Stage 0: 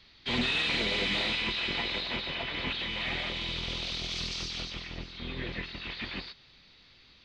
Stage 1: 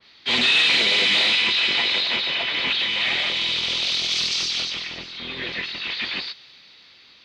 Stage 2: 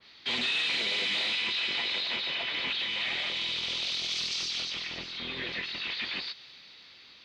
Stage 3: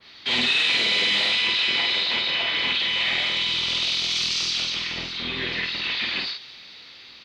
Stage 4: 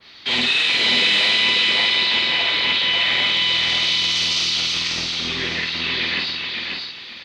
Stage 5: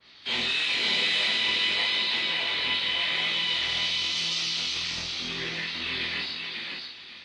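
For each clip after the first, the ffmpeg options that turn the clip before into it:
ffmpeg -i in.wav -af "highpass=frequency=430:poles=1,adynamicequalizer=threshold=0.00562:dfrequency=2000:dqfactor=0.7:tfrequency=2000:tqfactor=0.7:attack=5:release=100:ratio=0.375:range=3:mode=boostabove:tftype=highshelf,volume=7.5dB" out.wav
ffmpeg -i in.wav -af "acompressor=threshold=-32dB:ratio=2,volume=-2.5dB" out.wav
ffmpeg -i in.wav -filter_complex "[0:a]asplit=2[link_01][link_02];[link_02]adelay=49,volume=-3dB[link_03];[link_01][link_03]amix=inputs=2:normalize=0,volume=6dB" out.wav
ffmpeg -i in.wav -af "aecho=1:1:542|1084|1626|2168:0.668|0.18|0.0487|0.0132,volume=2.5dB" out.wav
ffmpeg -i in.wav -af "acrusher=bits=8:mode=log:mix=0:aa=0.000001,flanger=delay=17.5:depth=5.5:speed=0.91,volume=-5dB" -ar 24000 -c:a libmp3lame -b:a 48k out.mp3

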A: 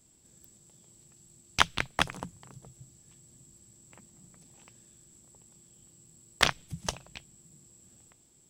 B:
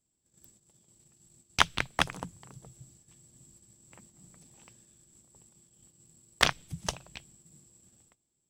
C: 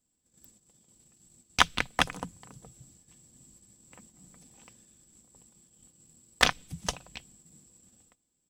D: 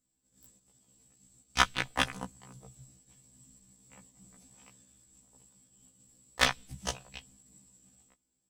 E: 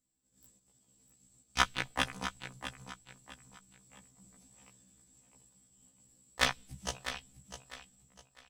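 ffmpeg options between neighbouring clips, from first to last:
ffmpeg -i in.wav -af "agate=range=-17dB:threshold=-57dB:ratio=16:detection=peak" out.wav
ffmpeg -i in.wav -af "aecho=1:1:4:0.37,volume=1dB" out.wav
ffmpeg -i in.wav -af "afftfilt=real='re*1.73*eq(mod(b,3),0)':imag='im*1.73*eq(mod(b,3),0)':win_size=2048:overlap=0.75" out.wav
ffmpeg -i in.wav -af "aecho=1:1:652|1304|1956:0.299|0.0925|0.0287,volume=-3dB" out.wav

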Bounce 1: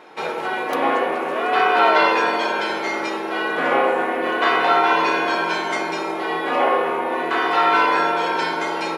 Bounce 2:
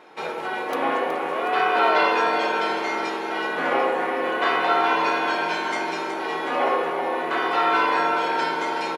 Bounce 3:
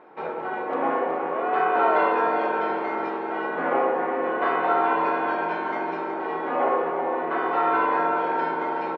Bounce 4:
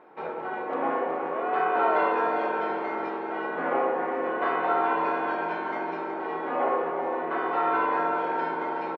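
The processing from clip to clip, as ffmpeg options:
ffmpeg -i in.wav -af "aecho=1:1:370|740|1110|1480|1850|2220|2590:0.355|0.199|0.111|0.0623|0.0349|0.0195|0.0109,volume=-4dB" out.wav
ffmpeg -i in.wav -af "lowpass=1400" out.wav
ffmpeg -i in.wav -filter_complex "[0:a]asplit=2[link_01][link_02];[link_02]adelay=400,highpass=300,lowpass=3400,asoftclip=type=hard:threshold=-18.5dB,volume=-23dB[link_03];[link_01][link_03]amix=inputs=2:normalize=0,volume=-3dB" out.wav

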